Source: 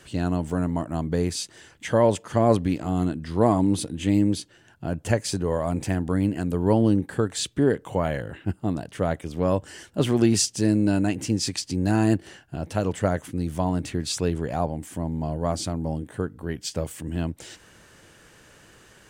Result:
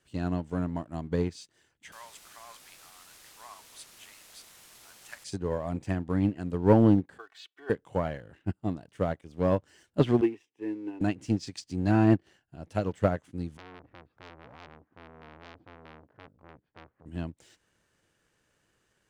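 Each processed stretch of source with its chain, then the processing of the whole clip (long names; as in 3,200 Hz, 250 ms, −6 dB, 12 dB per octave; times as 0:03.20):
0:01.92–0:05.24: high-pass filter 1,100 Hz 24 dB per octave + bit-depth reduction 6 bits, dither triangular
0:07.18–0:07.70: flat-topped band-pass 1,700 Hz, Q 0.69 + comb filter 2.7 ms, depth 97%
0:10.21–0:11.01: Bessel high-pass filter 240 Hz, order 6 + high-frequency loss of the air 360 metres + phaser with its sweep stopped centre 920 Hz, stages 8
0:13.57–0:17.06: low-pass filter 1,400 Hz 24 dB per octave + saturating transformer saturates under 3,000 Hz
whole clip: treble cut that deepens with the level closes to 2,400 Hz, closed at −15.5 dBFS; leveller curve on the samples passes 1; expander for the loud parts 2.5 to 1, over −27 dBFS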